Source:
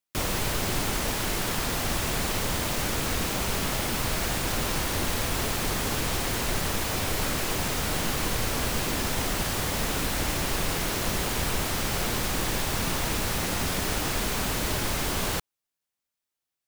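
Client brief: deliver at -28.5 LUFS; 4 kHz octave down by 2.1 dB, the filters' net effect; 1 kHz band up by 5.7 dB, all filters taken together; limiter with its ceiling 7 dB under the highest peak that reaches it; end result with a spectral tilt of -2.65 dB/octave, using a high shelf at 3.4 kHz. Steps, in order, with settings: peaking EQ 1 kHz +7 dB; treble shelf 3.4 kHz +5 dB; peaking EQ 4 kHz -7 dB; trim -1 dB; peak limiter -19.5 dBFS

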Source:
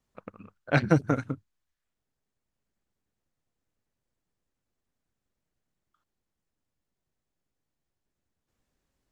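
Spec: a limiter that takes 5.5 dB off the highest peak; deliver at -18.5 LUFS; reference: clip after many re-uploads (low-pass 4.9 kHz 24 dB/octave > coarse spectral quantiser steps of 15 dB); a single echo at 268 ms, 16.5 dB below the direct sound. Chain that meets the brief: peak limiter -12 dBFS; low-pass 4.9 kHz 24 dB/octave; delay 268 ms -16.5 dB; coarse spectral quantiser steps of 15 dB; trim +11.5 dB

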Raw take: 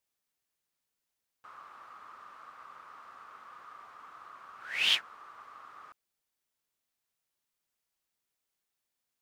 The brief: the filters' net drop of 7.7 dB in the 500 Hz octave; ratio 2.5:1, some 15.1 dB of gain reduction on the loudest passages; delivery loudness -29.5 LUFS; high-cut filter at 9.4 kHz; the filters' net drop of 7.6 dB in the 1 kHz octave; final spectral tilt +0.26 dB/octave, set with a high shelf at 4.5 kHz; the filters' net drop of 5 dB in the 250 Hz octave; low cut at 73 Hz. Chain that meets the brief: high-pass 73 Hz; low-pass 9.4 kHz; peaking EQ 250 Hz -4 dB; peaking EQ 500 Hz -6 dB; peaking EQ 1 kHz -8.5 dB; treble shelf 4.5 kHz -4 dB; compression 2.5:1, threshold -48 dBFS; trim +22 dB

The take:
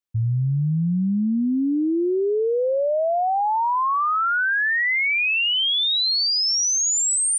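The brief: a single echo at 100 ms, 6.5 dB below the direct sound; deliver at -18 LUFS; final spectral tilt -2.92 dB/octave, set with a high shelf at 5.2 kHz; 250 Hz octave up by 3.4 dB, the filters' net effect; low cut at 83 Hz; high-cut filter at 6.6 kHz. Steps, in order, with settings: high-pass 83 Hz; low-pass 6.6 kHz; peaking EQ 250 Hz +4.5 dB; treble shelf 5.2 kHz +7.5 dB; delay 100 ms -6.5 dB; trim -0.5 dB

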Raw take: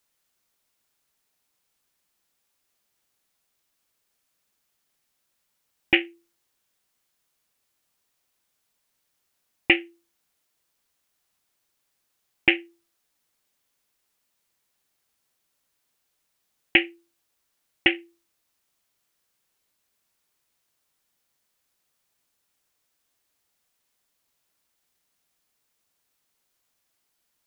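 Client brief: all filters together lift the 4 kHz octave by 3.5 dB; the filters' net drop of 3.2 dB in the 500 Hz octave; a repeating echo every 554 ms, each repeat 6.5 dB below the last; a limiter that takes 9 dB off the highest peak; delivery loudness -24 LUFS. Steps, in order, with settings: peaking EQ 500 Hz -6.5 dB; peaking EQ 4 kHz +6.5 dB; peak limiter -9 dBFS; feedback delay 554 ms, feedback 47%, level -6.5 dB; trim +7.5 dB

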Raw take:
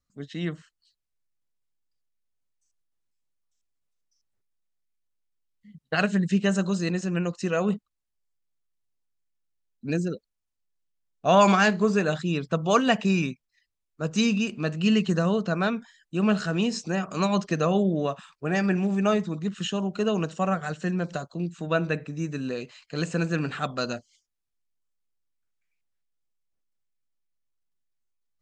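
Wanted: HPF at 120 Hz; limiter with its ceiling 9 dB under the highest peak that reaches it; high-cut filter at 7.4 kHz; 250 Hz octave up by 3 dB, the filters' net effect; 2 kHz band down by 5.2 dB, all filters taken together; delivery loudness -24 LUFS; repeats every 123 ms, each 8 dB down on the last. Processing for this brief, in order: high-pass 120 Hz; low-pass 7.4 kHz; peaking EQ 250 Hz +5 dB; peaking EQ 2 kHz -7.5 dB; peak limiter -14 dBFS; feedback delay 123 ms, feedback 40%, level -8 dB; trim +1 dB

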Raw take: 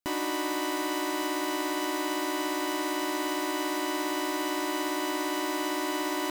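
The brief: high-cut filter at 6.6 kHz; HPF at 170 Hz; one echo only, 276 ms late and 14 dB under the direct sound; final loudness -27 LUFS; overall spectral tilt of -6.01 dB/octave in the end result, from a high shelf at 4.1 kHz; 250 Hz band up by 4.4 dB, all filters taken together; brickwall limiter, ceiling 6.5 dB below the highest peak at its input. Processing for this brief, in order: high-pass 170 Hz; low-pass 6.6 kHz; peaking EQ 250 Hz +6.5 dB; treble shelf 4.1 kHz +3.5 dB; peak limiter -22 dBFS; delay 276 ms -14 dB; trim +3.5 dB

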